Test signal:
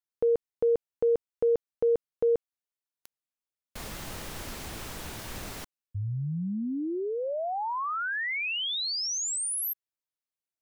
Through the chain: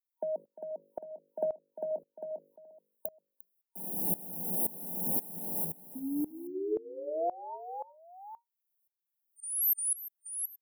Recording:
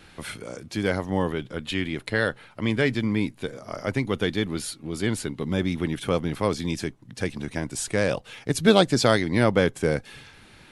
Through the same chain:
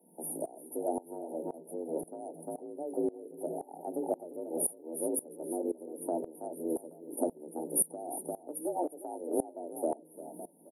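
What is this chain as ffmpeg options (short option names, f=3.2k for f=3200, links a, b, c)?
-af "afftfilt=real='re*(1-between(b*sr/4096,780,8800))':imag='im*(1-between(b*sr/4096,780,8800))':win_size=4096:overlap=0.75,bandreject=f=50:t=h:w=6,bandreject=f=100:t=h:w=6,bandreject=f=150:t=h:w=6,bandreject=f=200:t=h:w=6,bandreject=f=250:t=h:w=6,bandreject=f=300:t=h:w=6,bandreject=f=350:t=h:w=6,bandreject=f=400:t=h:w=6,acompressor=threshold=-31dB:ratio=20:attack=45:release=350:knee=6:detection=rms,afreqshift=160,aexciter=amount=3.2:drive=7.8:freq=9.9k,aecho=1:1:350|826:0.355|0.178,aeval=exprs='val(0)*pow(10,-21*if(lt(mod(-1.9*n/s,1),2*abs(-1.9)/1000),1-mod(-1.9*n/s,1)/(2*abs(-1.9)/1000),(mod(-1.9*n/s,1)-2*abs(-1.9)/1000)/(1-2*abs(-1.9)/1000))/20)':c=same,volume=5.5dB"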